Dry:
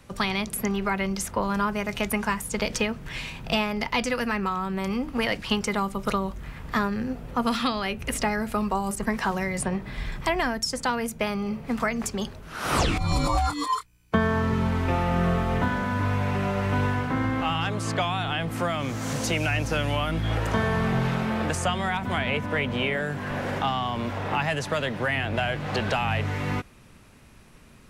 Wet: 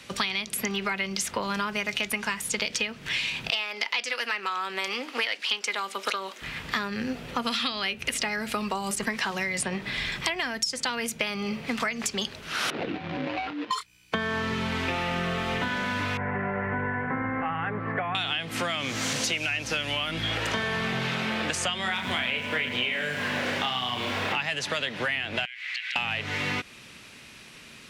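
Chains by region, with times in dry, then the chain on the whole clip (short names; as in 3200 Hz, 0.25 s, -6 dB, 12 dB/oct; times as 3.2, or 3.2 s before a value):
3.5–6.42 Bessel high-pass 470 Hz, order 4 + Doppler distortion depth 0.12 ms
12.7–13.71 median filter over 41 samples + HPF 220 Hz + air absorption 310 m
16.17–18.15 elliptic low-pass 1900 Hz, stop band 80 dB + notch comb 310 Hz
21.82–24.33 doubler 32 ms -4.5 dB + lo-fi delay 0.106 s, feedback 55%, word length 7-bit, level -11 dB
25.45–25.96 ladder high-pass 1900 Hz, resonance 70% + compressor 5:1, threshold -40 dBFS
whole clip: weighting filter D; compressor, threshold -28 dBFS; gain +2.5 dB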